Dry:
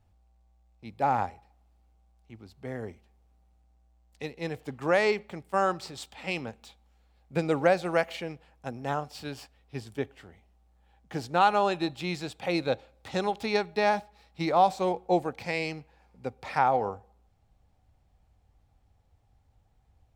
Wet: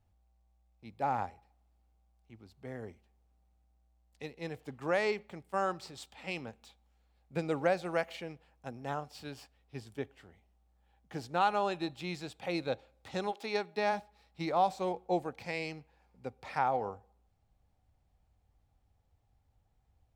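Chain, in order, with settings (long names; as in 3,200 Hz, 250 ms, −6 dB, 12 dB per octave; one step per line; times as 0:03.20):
0:13.31–0:13.91: high-pass filter 310 Hz → 120 Hz 24 dB per octave
level −6.5 dB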